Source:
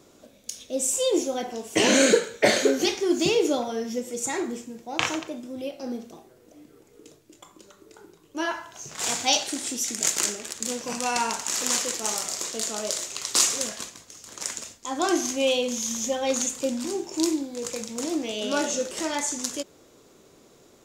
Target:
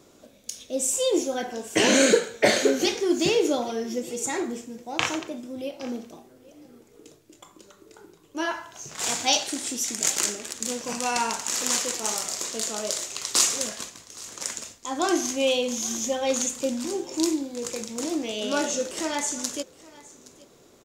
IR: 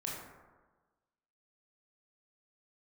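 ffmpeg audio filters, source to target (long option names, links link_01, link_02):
-filter_complex "[0:a]asettb=1/sr,asplit=3[link_01][link_02][link_03];[link_01]atrim=end=1.314[link_04];[link_02]atrim=start=1.31:end=1.86,asetpts=PTS-STARTPTS,afade=type=in:duration=0.004:curve=qsin,afade=type=out:start_time=0.546:duration=0.004:curve=qsin,equalizer=frequency=1600:width=7.7:gain=11[link_05];[link_03]atrim=start=1.856[link_06];[link_04][link_05]acrossfade=duration=0.004:curve1=hsin:curve2=qsin[link_07];[link_07][link_06]acrossfade=duration=0.004:curve1=qsin:curve2=hsin,asplit=2[link_08][link_09];[link_09]aecho=0:1:819:0.0891[link_10];[link_08][link_10]amix=inputs=2:normalize=0"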